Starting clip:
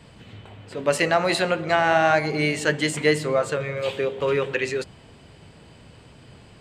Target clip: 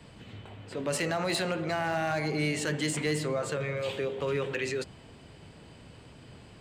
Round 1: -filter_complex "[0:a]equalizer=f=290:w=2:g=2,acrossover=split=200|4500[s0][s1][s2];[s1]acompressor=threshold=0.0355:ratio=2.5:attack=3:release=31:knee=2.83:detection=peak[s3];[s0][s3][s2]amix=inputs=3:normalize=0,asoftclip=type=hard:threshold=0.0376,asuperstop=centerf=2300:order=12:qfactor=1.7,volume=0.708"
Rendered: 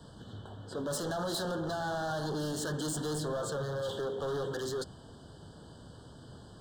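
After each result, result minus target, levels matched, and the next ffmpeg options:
hard clipper: distortion +15 dB; 2 kHz band -5.0 dB
-filter_complex "[0:a]equalizer=f=290:w=2:g=2,acrossover=split=200|4500[s0][s1][s2];[s1]acompressor=threshold=0.0355:ratio=2.5:attack=3:release=31:knee=2.83:detection=peak[s3];[s0][s3][s2]amix=inputs=3:normalize=0,asoftclip=type=hard:threshold=0.112,asuperstop=centerf=2300:order=12:qfactor=1.7,volume=0.708"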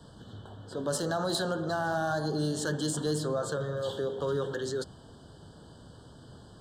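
2 kHz band -4.0 dB
-filter_complex "[0:a]equalizer=f=290:w=2:g=2,acrossover=split=200|4500[s0][s1][s2];[s1]acompressor=threshold=0.0355:ratio=2.5:attack=3:release=31:knee=2.83:detection=peak[s3];[s0][s3][s2]amix=inputs=3:normalize=0,asoftclip=type=hard:threshold=0.112,volume=0.708"

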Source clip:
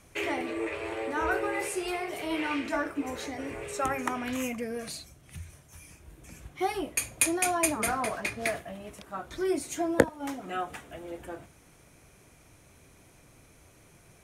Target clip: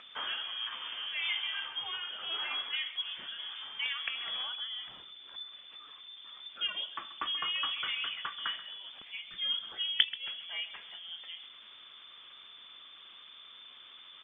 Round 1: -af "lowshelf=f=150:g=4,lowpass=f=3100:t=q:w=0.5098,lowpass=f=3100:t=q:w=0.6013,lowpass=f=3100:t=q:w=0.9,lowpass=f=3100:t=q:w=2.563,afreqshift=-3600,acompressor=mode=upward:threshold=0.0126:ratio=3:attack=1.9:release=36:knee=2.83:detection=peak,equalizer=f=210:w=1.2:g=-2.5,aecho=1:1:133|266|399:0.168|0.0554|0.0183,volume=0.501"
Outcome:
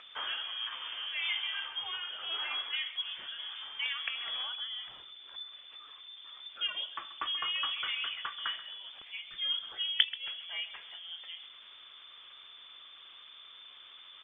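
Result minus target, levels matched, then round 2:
250 Hz band -4.5 dB
-af "lowshelf=f=150:g=4,lowpass=f=3100:t=q:w=0.5098,lowpass=f=3100:t=q:w=0.6013,lowpass=f=3100:t=q:w=0.9,lowpass=f=3100:t=q:w=2.563,afreqshift=-3600,acompressor=mode=upward:threshold=0.0126:ratio=3:attack=1.9:release=36:knee=2.83:detection=peak,equalizer=f=210:w=1.2:g=5,aecho=1:1:133|266|399:0.168|0.0554|0.0183,volume=0.501"

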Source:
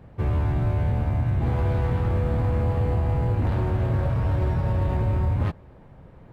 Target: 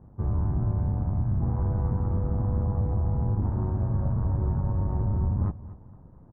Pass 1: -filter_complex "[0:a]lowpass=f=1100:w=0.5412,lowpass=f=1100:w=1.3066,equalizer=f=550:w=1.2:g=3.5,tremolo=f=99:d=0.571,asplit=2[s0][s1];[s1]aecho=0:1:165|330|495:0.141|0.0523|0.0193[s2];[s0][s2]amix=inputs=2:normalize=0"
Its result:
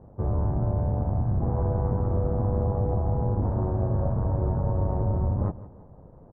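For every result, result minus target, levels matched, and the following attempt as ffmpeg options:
500 Hz band +7.5 dB; echo 72 ms early
-filter_complex "[0:a]lowpass=f=1100:w=0.5412,lowpass=f=1100:w=1.3066,equalizer=f=550:w=1.2:g=-7.5,tremolo=f=99:d=0.571,asplit=2[s0][s1];[s1]aecho=0:1:165|330|495:0.141|0.0523|0.0193[s2];[s0][s2]amix=inputs=2:normalize=0"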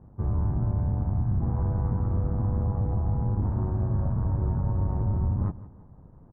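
echo 72 ms early
-filter_complex "[0:a]lowpass=f=1100:w=0.5412,lowpass=f=1100:w=1.3066,equalizer=f=550:w=1.2:g=-7.5,tremolo=f=99:d=0.571,asplit=2[s0][s1];[s1]aecho=0:1:237|474|711:0.141|0.0523|0.0193[s2];[s0][s2]amix=inputs=2:normalize=0"

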